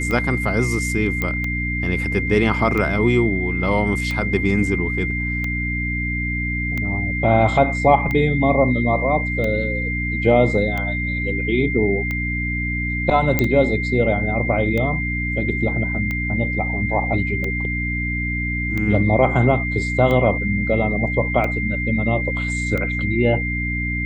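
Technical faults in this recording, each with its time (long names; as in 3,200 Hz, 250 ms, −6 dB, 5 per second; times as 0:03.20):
mains hum 60 Hz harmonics 5 −25 dBFS
scratch tick 45 rpm −13 dBFS
whistle 2,100 Hz −24 dBFS
0:01.22: click −9 dBFS
0:13.39: click −4 dBFS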